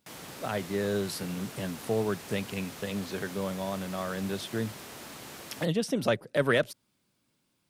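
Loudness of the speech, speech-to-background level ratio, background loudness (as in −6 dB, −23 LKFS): −32.0 LKFS, 11.5 dB, −43.5 LKFS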